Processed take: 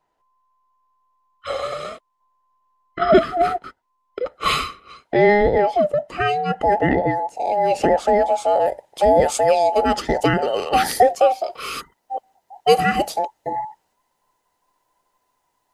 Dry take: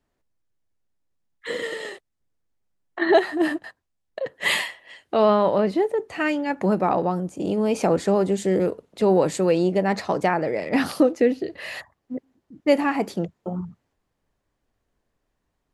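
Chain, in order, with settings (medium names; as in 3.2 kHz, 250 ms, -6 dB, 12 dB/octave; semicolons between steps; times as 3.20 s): every band turned upside down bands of 1 kHz; treble shelf 5.2 kHz -6.5 dB, from 8.66 s +6 dB, from 10.39 s +11 dB; trim +3.5 dB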